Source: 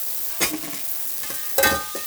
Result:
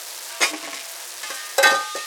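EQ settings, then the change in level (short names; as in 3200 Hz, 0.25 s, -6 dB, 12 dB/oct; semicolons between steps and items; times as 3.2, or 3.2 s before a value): BPF 590–7900 Hz; high shelf 5700 Hz -4.5 dB; +5.5 dB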